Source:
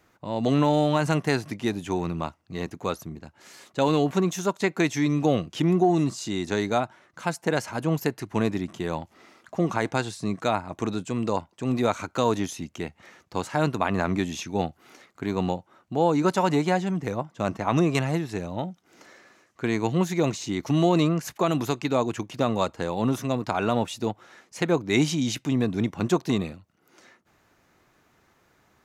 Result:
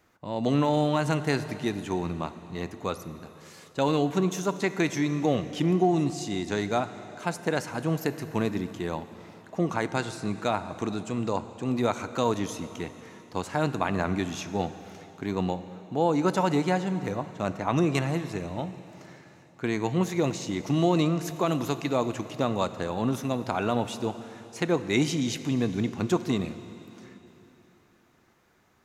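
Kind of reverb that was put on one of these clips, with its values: plate-style reverb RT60 3.4 s, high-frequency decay 1×, DRR 11.5 dB; gain -2.5 dB

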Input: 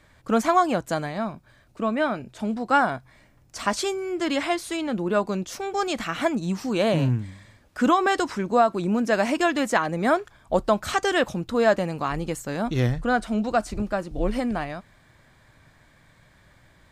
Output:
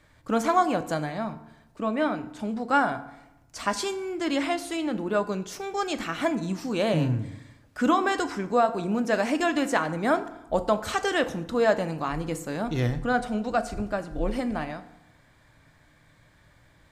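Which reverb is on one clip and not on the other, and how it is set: FDN reverb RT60 0.87 s, low-frequency decay 1.1×, high-frequency decay 0.65×, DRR 9.5 dB; gain -3 dB

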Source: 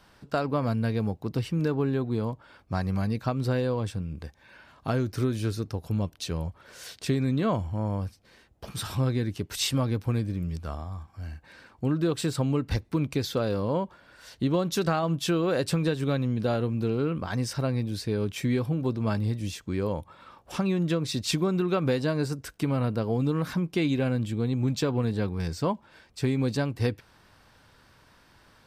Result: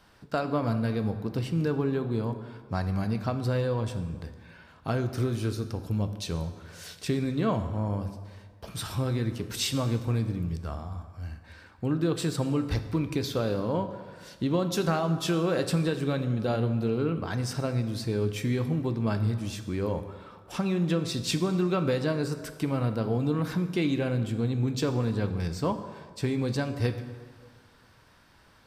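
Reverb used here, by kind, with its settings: plate-style reverb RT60 1.7 s, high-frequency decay 0.65×, DRR 8 dB; gain -1.5 dB

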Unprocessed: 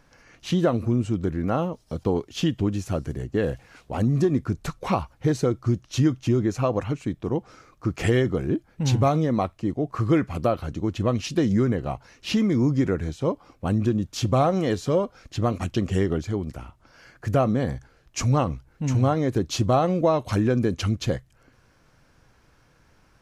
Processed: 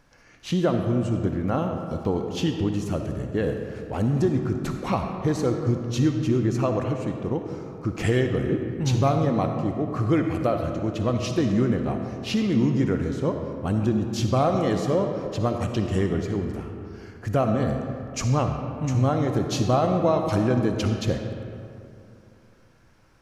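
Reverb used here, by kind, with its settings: digital reverb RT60 2.7 s, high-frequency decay 0.5×, pre-delay 20 ms, DRR 4.5 dB; gain -1.5 dB

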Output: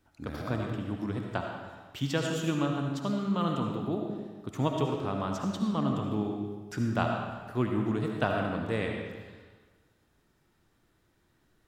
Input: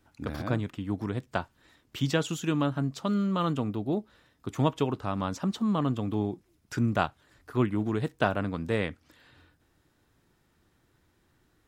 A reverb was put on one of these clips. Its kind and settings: digital reverb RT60 1.4 s, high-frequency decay 0.85×, pre-delay 35 ms, DRR 1.5 dB; gain -3.5 dB

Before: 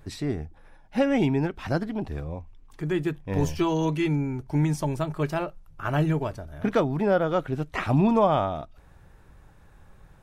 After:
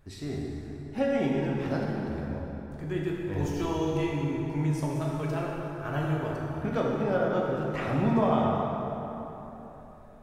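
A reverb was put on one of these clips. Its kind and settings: plate-style reverb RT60 3.6 s, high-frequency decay 0.6×, DRR -3.5 dB; gain -8.5 dB

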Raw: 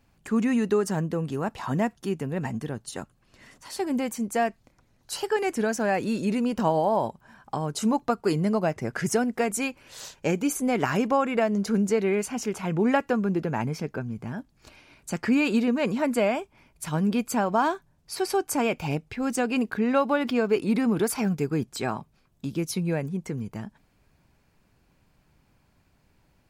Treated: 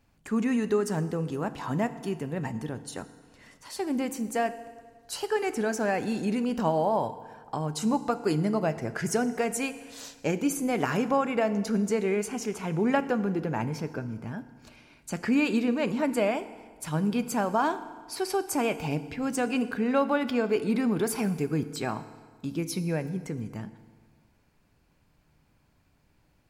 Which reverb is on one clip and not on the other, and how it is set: FDN reverb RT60 1.6 s, low-frequency decay 1×, high-frequency decay 0.8×, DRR 11.5 dB; gain -2.5 dB

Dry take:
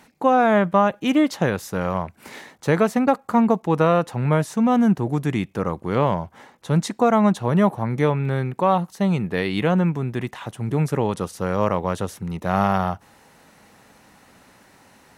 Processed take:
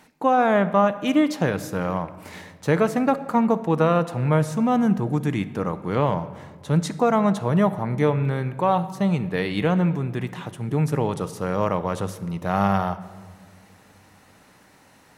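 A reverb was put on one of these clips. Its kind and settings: shoebox room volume 2000 m³, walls mixed, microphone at 0.49 m; gain -2 dB

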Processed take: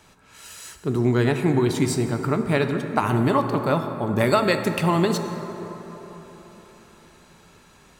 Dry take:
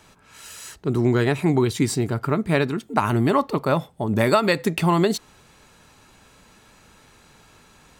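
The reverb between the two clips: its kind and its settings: plate-style reverb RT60 4.3 s, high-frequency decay 0.4×, DRR 6.5 dB; gain -1.5 dB

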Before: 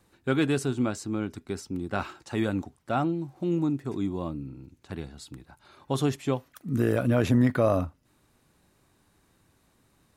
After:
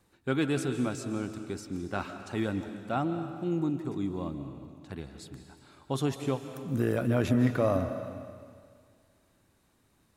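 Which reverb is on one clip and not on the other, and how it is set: digital reverb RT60 2 s, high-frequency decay 1×, pre-delay 0.11 s, DRR 8.5 dB; gain -3.5 dB

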